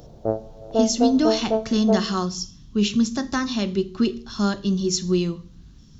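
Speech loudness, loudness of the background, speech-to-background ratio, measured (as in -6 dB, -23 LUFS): -23.0 LUFS, -25.5 LUFS, 2.5 dB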